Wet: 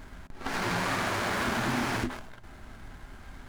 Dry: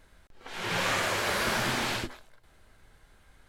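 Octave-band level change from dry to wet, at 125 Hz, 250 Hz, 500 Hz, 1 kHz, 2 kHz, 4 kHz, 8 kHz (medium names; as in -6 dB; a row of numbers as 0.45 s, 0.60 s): +3.0 dB, +5.0 dB, -1.0 dB, +1.0 dB, -1.5 dB, -4.5 dB, -4.0 dB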